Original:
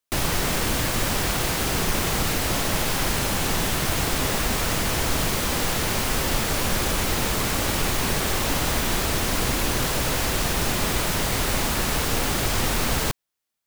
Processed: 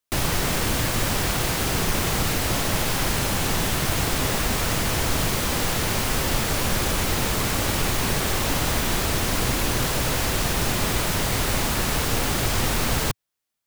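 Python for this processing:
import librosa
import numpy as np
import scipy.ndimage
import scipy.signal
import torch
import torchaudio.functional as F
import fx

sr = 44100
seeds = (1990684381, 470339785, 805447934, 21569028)

y = fx.peak_eq(x, sr, hz=110.0, db=3.0, octaves=0.86)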